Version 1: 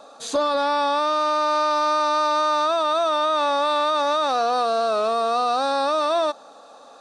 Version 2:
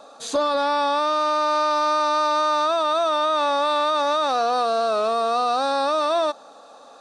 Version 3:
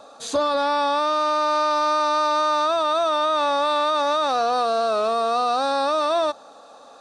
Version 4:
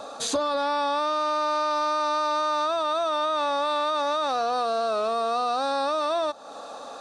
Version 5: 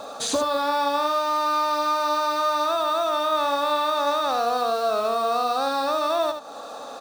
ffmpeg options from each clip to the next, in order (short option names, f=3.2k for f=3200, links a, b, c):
-af anull
-af "equalizer=f=93:w=3.1:g=12.5"
-af "acompressor=threshold=-34dB:ratio=3,volume=7dB"
-filter_complex "[0:a]acrusher=bits=6:mode=log:mix=0:aa=0.000001,asplit=2[a][b];[b]aecho=0:1:77:0.447[c];[a][c]amix=inputs=2:normalize=0,volume=1.5dB"